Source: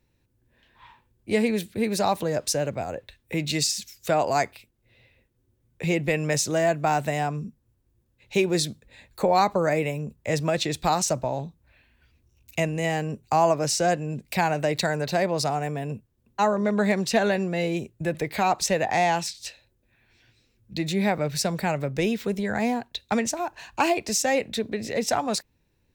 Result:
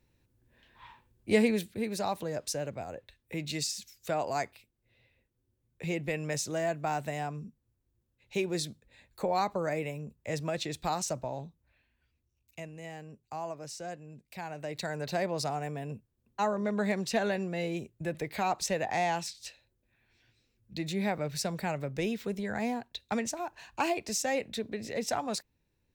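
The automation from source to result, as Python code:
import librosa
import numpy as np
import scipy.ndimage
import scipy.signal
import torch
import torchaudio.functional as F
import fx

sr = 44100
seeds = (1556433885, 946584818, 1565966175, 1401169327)

y = fx.gain(x, sr, db=fx.line((1.39, -1.5), (1.89, -9.0), (11.45, -9.0), (12.6, -18.0), (14.38, -18.0), (15.09, -7.5)))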